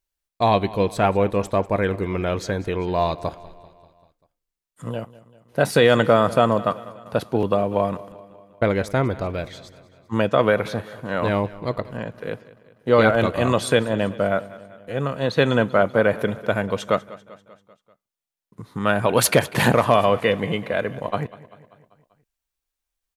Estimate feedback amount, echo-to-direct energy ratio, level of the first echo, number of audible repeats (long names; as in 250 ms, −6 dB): 58%, −17.0 dB, −19.0 dB, 4